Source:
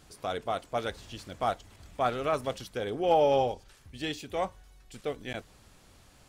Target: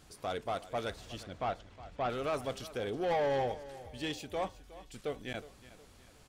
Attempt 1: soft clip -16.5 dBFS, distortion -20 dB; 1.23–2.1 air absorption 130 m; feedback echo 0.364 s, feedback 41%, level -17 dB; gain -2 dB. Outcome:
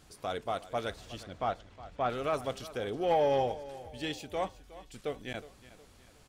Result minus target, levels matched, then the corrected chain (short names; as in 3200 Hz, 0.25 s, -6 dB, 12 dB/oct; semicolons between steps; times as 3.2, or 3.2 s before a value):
soft clip: distortion -10 dB
soft clip -25 dBFS, distortion -10 dB; 1.23–2.1 air absorption 130 m; feedback echo 0.364 s, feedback 41%, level -17 dB; gain -2 dB